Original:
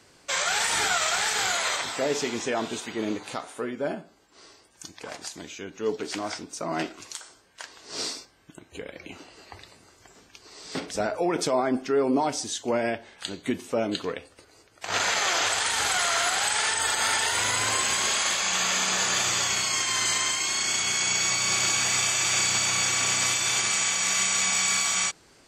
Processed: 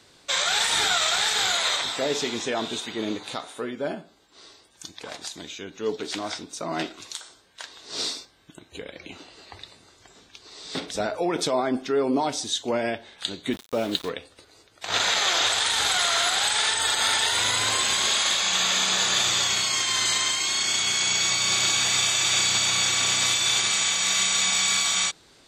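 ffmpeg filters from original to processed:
ffmpeg -i in.wav -filter_complex "[0:a]asettb=1/sr,asplit=3[link_01][link_02][link_03];[link_01]atrim=end=8.844[link_04];[link_02]atrim=start=8.84:end=10.73,asetpts=PTS-STARTPTS,afade=type=in:duration=0.004:curve=qsin,afade=type=out:start_time=1.886:duration=0.004:curve=qsin,lowpass=11000[link_05];[link_03]atrim=start=10.726[link_06];[link_04][link_05]acrossfade=duration=0.004:curve1=hsin:curve2=qsin[link_07];[link_07][link_06]acrossfade=duration=0.004:curve1=qsin:curve2=hsin,asplit=3[link_08][link_09][link_10];[link_08]afade=type=out:start_time=13.51:duration=0.02[link_11];[link_09]aeval=exprs='val(0)*gte(abs(val(0)),0.0178)':channel_layout=same,afade=type=in:start_time=13.51:duration=0.02,afade=type=out:start_time=14.08:duration=0.02[link_12];[link_10]afade=type=in:start_time=14.08:duration=0.02[link_13];[link_11][link_12][link_13]amix=inputs=3:normalize=0,equalizer=frequency=3700:width=4.4:gain=10.5" out.wav

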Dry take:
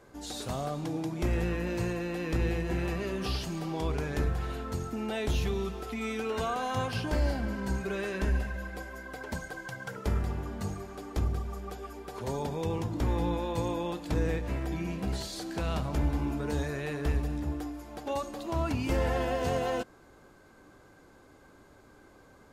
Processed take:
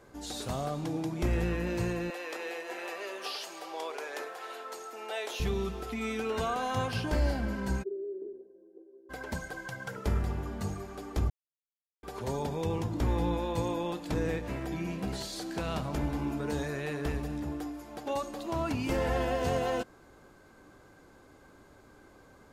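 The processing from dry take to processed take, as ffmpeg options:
ffmpeg -i in.wav -filter_complex "[0:a]asettb=1/sr,asplit=3[link_01][link_02][link_03];[link_01]atrim=end=2.104[link_04];[link_02]atrim=start=2.1:end=5.4,asetpts=PTS-STARTPTS,afade=type=in:duration=0.004:curve=qsin,afade=type=out:start_time=3.296:duration=0.004:curve=qsin,highpass=frequency=470:width=0.5412,highpass=frequency=470:width=1.3066[link_05];[link_03]atrim=start=5.396[link_06];[link_04][link_05]acrossfade=duration=0.004:curve1=hsin:curve2=qsin[link_07];[link_07][link_06]acrossfade=duration=0.004:curve1=qsin:curve2=hsin,asplit=3[link_08][link_09][link_10];[link_08]afade=type=out:start_time=7.82:duration=0.02[link_11];[link_09]asuperpass=centerf=380:order=4:qfactor=4.4,afade=type=in:start_time=7.82:duration=0.02,afade=type=out:start_time=9.09:duration=0.02[link_12];[link_10]afade=type=in:start_time=9.09:duration=0.02[link_13];[link_11][link_12][link_13]amix=inputs=3:normalize=0,asettb=1/sr,asplit=3[link_14][link_15][link_16];[link_14]atrim=end=13.634[link_17];[link_15]atrim=start=13.63:end=19.09,asetpts=PTS-STARTPTS,afade=type=in:duration=0.004:curve=qsin,afade=type=out:start_time=5.456:duration=0.004:curve=qsin,equalizer=frequency=67:width=1.5:gain=-8[link_18];[link_16]atrim=start=19.086[link_19];[link_17][link_18]acrossfade=duration=0.004:curve1=hsin:curve2=qsin[link_20];[link_20][link_19]acrossfade=duration=0.004:curve1=qsin:curve2=hsin,asplit=3[link_21][link_22][link_23];[link_21]atrim=end=11.3,asetpts=PTS-STARTPTS,afade=type=out:start_time=11.296:duration=0.004:curve=hsin[link_24];[link_22]atrim=start=11.3:end=12.03,asetpts=PTS-STARTPTS,volume=0[link_25];[link_23]atrim=start=12.03,asetpts=PTS-STARTPTS,afade=type=in:duration=0.004:curve=hsin[link_26];[link_24][link_25][link_26]concat=n=3:v=0:a=1" out.wav

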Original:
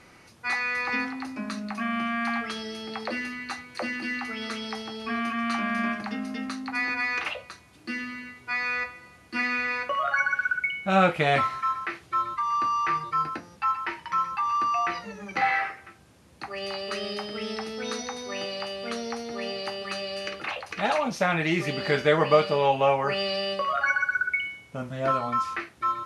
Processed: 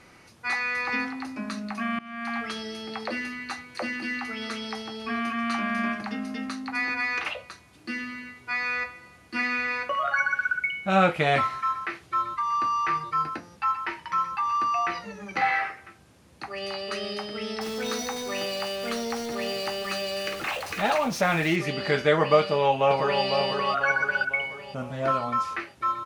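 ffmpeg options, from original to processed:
ffmpeg -i in.wav -filter_complex "[0:a]asettb=1/sr,asplit=3[link_01][link_02][link_03];[link_01]atrim=end=17.614[link_04];[link_02]atrim=start=17.61:end=21.56,asetpts=PTS-STARTPTS,afade=type=in:duration=0.004:curve=qsin,afade=type=out:start_time=3.946:duration=0.004:curve=qsin,aeval=exprs='val(0)+0.5*0.0188*sgn(val(0))':channel_layout=same[link_05];[link_03]atrim=start=21.556[link_06];[link_04][link_05]acrossfade=duration=0.004:curve1=hsin:curve2=qsin[link_07];[link_07][link_06]acrossfade=duration=0.004:curve1=qsin:curve2=hsin,asplit=2[link_08][link_09];[link_09]afade=type=in:start_time=22.4:duration=0.01,afade=type=out:start_time=23.24:duration=0.01,aecho=0:1:500|1000|1500|2000|2500|3000:0.562341|0.281171|0.140585|0.0702927|0.0351463|0.0175732[link_10];[link_08][link_10]amix=inputs=2:normalize=0,asplit=2[link_11][link_12];[link_11]atrim=end=1.99,asetpts=PTS-STARTPTS,afade=type=out:start_time=1.986:duration=0.004:curve=hsin:silence=0.0749894[link_13];[link_12]atrim=start=1.99,asetpts=PTS-STARTPTS,afade=type=in:duration=0.47:silence=0.0749894[link_14];[link_13][link_14]concat=n=2:v=0:a=1" out.wav

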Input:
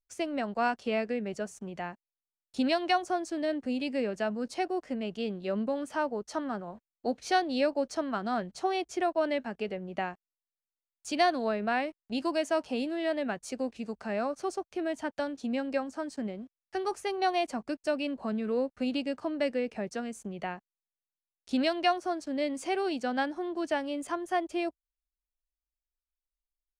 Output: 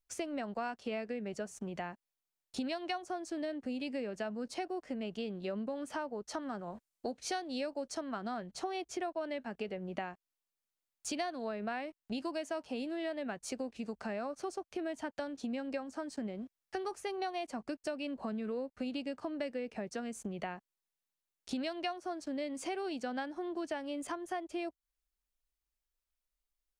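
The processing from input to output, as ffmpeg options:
ffmpeg -i in.wav -filter_complex "[0:a]asettb=1/sr,asplit=3[link_01][link_02][link_03];[link_01]atrim=end=6.424[link_04];[link_02]atrim=start=6.42:end=8.01,asetpts=PTS-STARTPTS,afade=type=in:duration=0.004:curve=qsin,afade=type=out:start_time=1.586:duration=0.004:curve=qsin,equalizer=frequency=8500:width_type=o:width=1.5:gain=5.5[link_05];[link_03]atrim=start=8.006[link_06];[link_04][link_05]acrossfade=duration=0.004:curve1=hsin:curve2=qsin[link_07];[link_07][link_06]acrossfade=duration=0.004:curve1=qsin:curve2=hsin,acompressor=threshold=-40dB:ratio=4,volume=3dB" out.wav

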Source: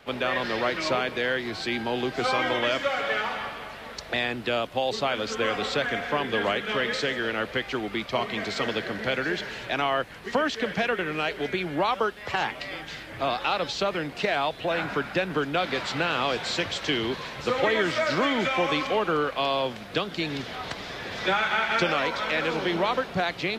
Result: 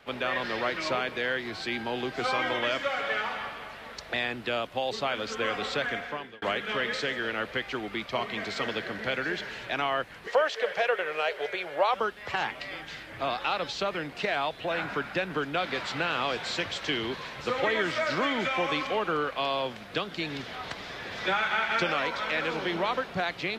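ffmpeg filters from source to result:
ffmpeg -i in.wav -filter_complex "[0:a]asettb=1/sr,asplit=3[link_01][link_02][link_03];[link_01]atrim=end=10.274[link_04];[link_02]atrim=start=10.27:end=11.94,asetpts=PTS-STARTPTS,afade=type=in:duration=0.004:curve=qsin,afade=type=out:start_time=1.666:duration=0.004:curve=qsin,lowshelf=frequency=360:width_type=q:width=3:gain=-12[link_05];[link_03]atrim=start=11.936[link_06];[link_04][link_05]acrossfade=duration=0.004:curve1=hsin:curve2=qsin[link_07];[link_07][link_06]acrossfade=duration=0.004:curve1=qsin:curve2=hsin,asplit=2[link_08][link_09];[link_08]atrim=end=6.42,asetpts=PTS-STARTPTS,afade=type=out:start_time=5.9:duration=0.52[link_10];[link_09]atrim=start=6.42,asetpts=PTS-STARTPTS,afade=type=in:duration=0.004:curve=hsin[link_11];[link_10][link_11]concat=n=2:v=0:a=1,equalizer=frequency=1700:width=0.55:gain=3,volume=-5dB" out.wav

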